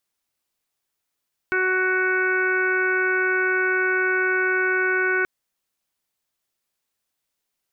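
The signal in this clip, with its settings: steady additive tone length 3.73 s, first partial 372 Hz, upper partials -13.5/-8/3.5/-9.5/-5/-16.5 dB, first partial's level -24 dB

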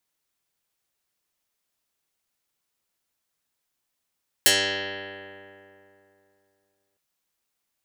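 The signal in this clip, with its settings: plucked string G2, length 2.51 s, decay 2.92 s, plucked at 0.08, dark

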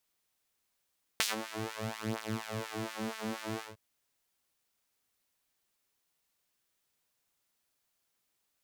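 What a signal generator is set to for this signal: synth patch with filter wobble A3, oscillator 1 saw, interval -12 st, oscillator 2 level 0 dB, sub -3 dB, noise -28.5 dB, filter highpass, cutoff 280 Hz, Q 0.93, filter envelope 2.5 oct, filter decay 0.36 s, filter sustain 30%, attack 3 ms, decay 0.15 s, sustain -20 dB, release 0.17 s, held 2.39 s, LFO 4.2 Hz, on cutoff 1.8 oct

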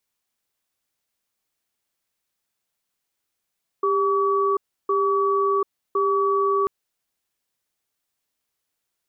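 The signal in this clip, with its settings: cadence 397 Hz, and 1.14 kHz, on 0.74 s, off 0.32 s, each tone -20.5 dBFS 2.84 s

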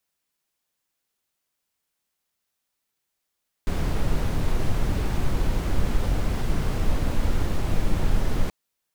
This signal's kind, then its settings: noise brown, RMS -20.5 dBFS 4.83 s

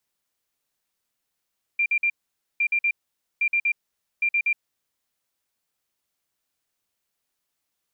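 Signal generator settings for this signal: beep pattern sine 2.38 kHz, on 0.07 s, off 0.05 s, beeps 3, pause 0.50 s, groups 4, -18.5 dBFS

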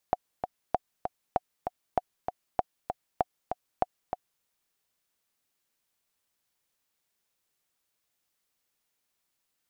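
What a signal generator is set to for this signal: metronome 195 bpm, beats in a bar 2, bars 7, 731 Hz, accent 6.5 dB -10.5 dBFS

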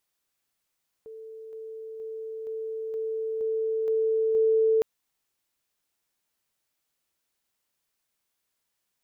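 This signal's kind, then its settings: level ladder 443 Hz -39.5 dBFS, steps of 3 dB, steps 8, 0.47 s 0.00 s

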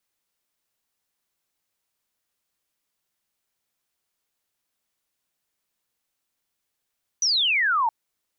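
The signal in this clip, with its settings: laser zap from 6.1 kHz, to 860 Hz, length 0.67 s sine, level -18.5 dB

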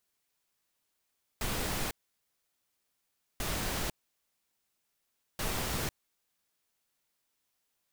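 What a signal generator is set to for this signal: noise bursts pink, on 0.50 s, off 1.49 s, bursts 3, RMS -33.5 dBFS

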